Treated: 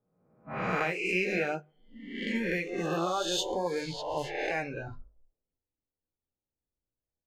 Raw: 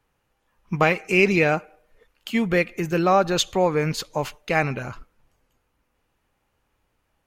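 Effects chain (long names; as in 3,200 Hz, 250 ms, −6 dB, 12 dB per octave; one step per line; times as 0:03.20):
peak hold with a rise ahead of every peak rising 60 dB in 1.15 s
downward compressor 2 to 1, threshold −34 dBFS, peak gain reduction 12.5 dB
feedback echo with a band-pass in the loop 145 ms, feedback 46%, band-pass 450 Hz, level −16 dB
noise reduction from a noise print of the clip's start 21 dB
flanger 0.52 Hz, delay 9.6 ms, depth 9.5 ms, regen −41%
mains-hum notches 50/100/150/200/250 Hz
low-pass that shuts in the quiet parts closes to 500 Hz, open at −28.5 dBFS
level +2 dB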